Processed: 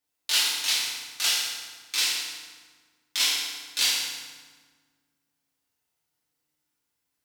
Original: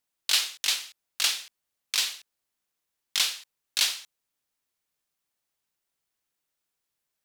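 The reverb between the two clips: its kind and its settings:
feedback delay network reverb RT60 1.5 s, low-frequency decay 1.5×, high-frequency decay 0.75×, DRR −7.5 dB
level −5 dB

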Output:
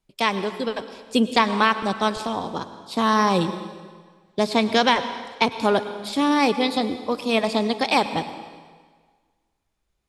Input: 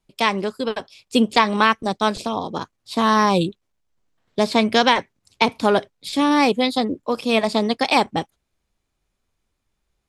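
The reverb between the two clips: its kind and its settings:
dense smooth reverb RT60 1.6 s, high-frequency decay 0.9×, pre-delay 85 ms, DRR 11 dB
level −2.5 dB

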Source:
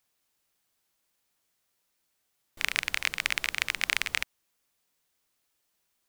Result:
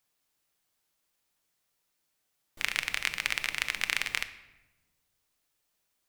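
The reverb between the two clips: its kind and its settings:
rectangular room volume 540 cubic metres, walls mixed, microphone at 0.44 metres
level −2 dB

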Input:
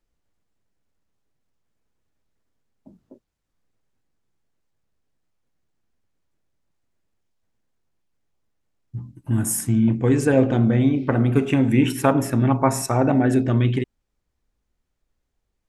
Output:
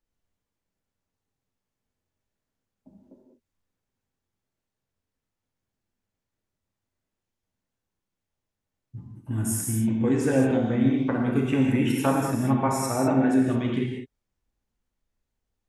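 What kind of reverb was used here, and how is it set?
reverb whose tail is shaped and stops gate 230 ms flat, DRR −1 dB
level −7.5 dB

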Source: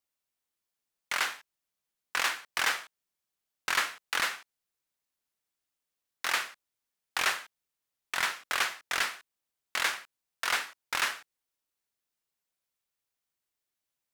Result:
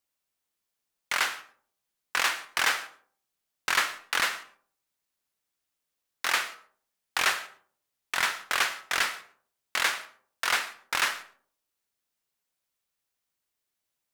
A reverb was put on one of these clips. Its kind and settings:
comb and all-pass reverb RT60 0.52 s, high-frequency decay 0.4×, pre-delay 65 ms, DRR 16.5 dB
level +3 dB

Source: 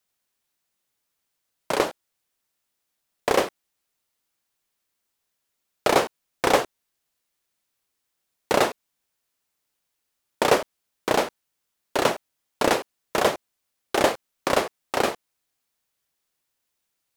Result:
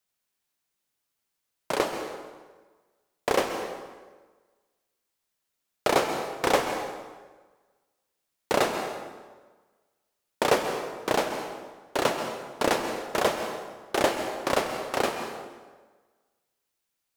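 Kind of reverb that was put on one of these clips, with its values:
dense smooth reverb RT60 1.4 s, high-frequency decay 0.75×, pre-delay 115 ms, DRR 6 dB
level −3.5 dB

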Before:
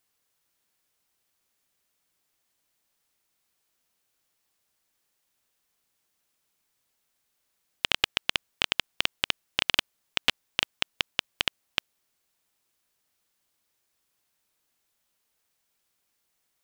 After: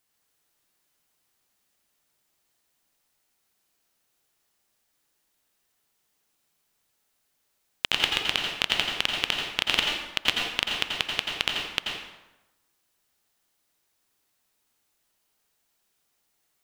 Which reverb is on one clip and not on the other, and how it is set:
dense smooth reverb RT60 1 s, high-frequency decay 0.7×, pre-delay 75 ms, DRR 0 dB

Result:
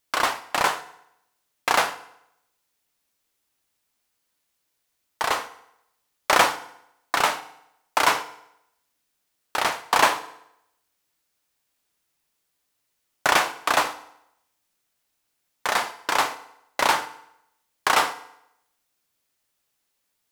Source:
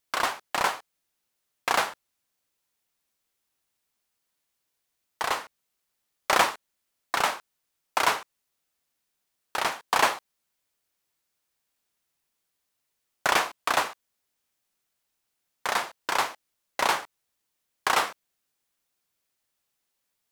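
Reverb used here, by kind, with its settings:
feedback delay network reverb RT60 0.79 s, low-frequency decay 0.9×, high-frequency decay 0.85×, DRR 10.5 dB
level +3.5 dB

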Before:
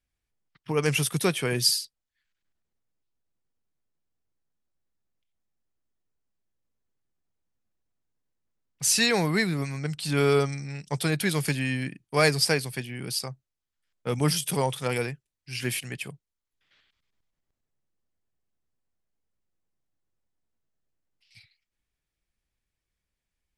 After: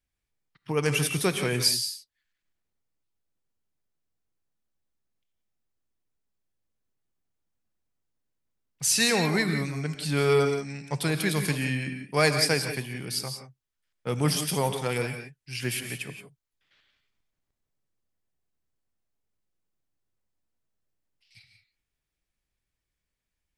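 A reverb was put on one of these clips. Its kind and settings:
reverb whose tail is shaped and stops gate 200 ms rising, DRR 6.5 dB
level −1 dB

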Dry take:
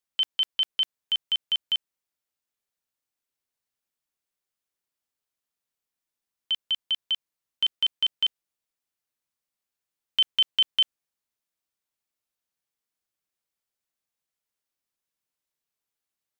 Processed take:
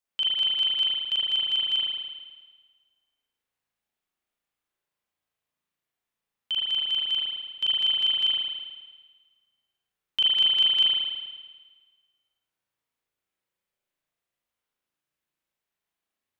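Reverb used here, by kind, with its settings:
spring reverb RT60 1.4 s, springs 36 ms, chirp 60 ms, DRR −7 dB
level −3 dB

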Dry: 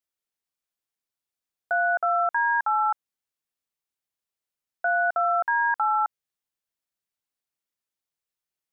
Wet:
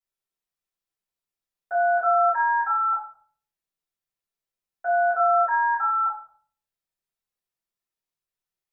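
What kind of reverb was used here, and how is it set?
rectangular room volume 59 cubic metres, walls mixed, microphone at 3.2 metres
level −15 dB

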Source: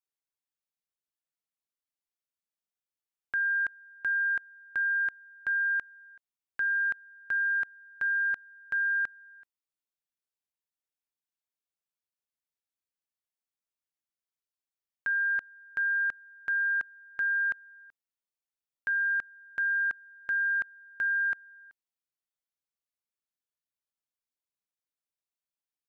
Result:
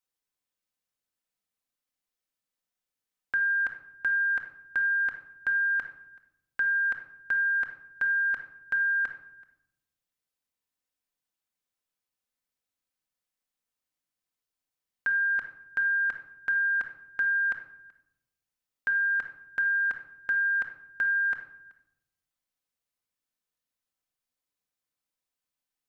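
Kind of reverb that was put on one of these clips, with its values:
rectangular room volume 1,900 cubic metres, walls furnished, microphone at 2 metres
level +3 dB

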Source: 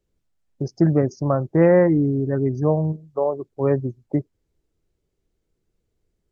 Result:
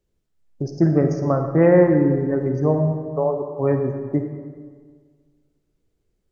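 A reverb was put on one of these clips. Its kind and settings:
comb and all-pass reverb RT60 1.7 s, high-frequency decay 0.65×, pre-delay 10 ms, DRR 4.5 dB

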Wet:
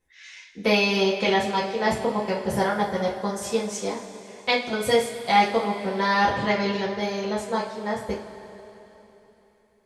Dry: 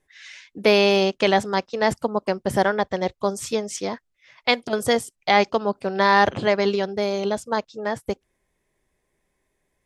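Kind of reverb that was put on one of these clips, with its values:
coupled-rooms reverb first 0.3 s, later 3.5 s, from −18 dB, DRR −5.5 dB
level −8 dB

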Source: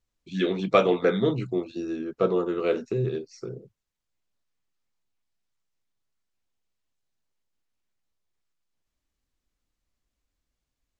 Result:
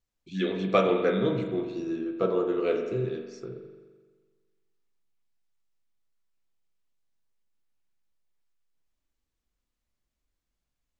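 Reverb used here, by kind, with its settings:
spring reverb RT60 1.5 s, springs 42 ms, chirp 50 ms, DRR 5 dB
level −3.5 dB

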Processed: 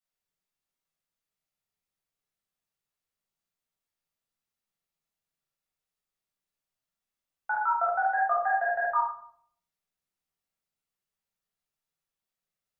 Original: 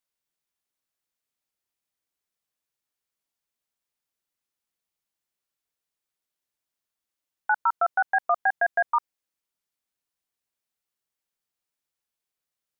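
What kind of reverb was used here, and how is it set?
rectangular room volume 970 cubic metres, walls furnished, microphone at 6.8 metres
level −10.5 dB

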